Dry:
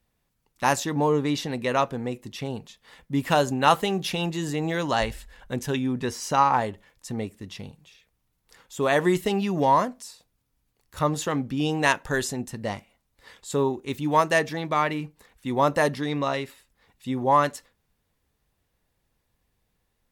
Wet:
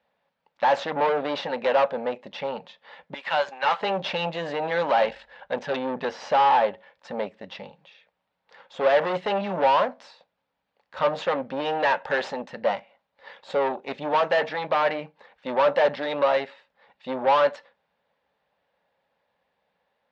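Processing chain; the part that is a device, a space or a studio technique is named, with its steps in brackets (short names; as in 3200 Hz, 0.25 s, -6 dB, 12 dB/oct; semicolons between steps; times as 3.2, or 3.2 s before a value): 3.14–3.81 HPF 1100 Hz 12 dB/oct; guitar amplifier (tube stage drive 29 dB, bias 0.75; tone controls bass -14 dB, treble -4 dB; speaker cabinet 92–4200 Hz, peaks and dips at 110 Hz -8 dB, 180 Hz +6 dB, 340 Hz -9 dB, 560 Hz +10 dB, 850 Hz +7 dB, 1600 Hz +3 dB); gain +7.5 dB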